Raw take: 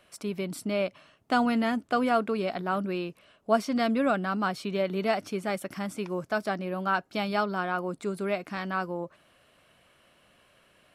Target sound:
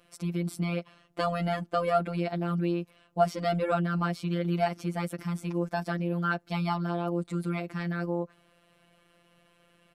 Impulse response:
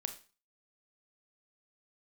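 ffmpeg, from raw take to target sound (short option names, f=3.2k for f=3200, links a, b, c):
-af "atempo=1.1,lowshelf=f=460:g=6.5,afftfilt=real='hypot(re,im)*cos(PI*b)':imag='0':win_size=1024:overlap=0.75"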